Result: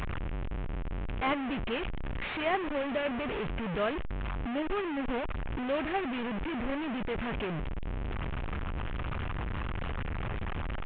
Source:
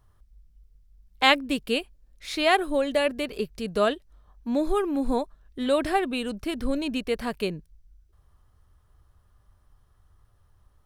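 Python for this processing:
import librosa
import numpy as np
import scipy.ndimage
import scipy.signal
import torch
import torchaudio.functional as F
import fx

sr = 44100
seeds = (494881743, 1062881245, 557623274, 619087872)

y = fx.delta_mod(x, sr, bps=16000, step_db=-19.0)
y = F.gain(torch.from_numpy(y), -8.5).numpy()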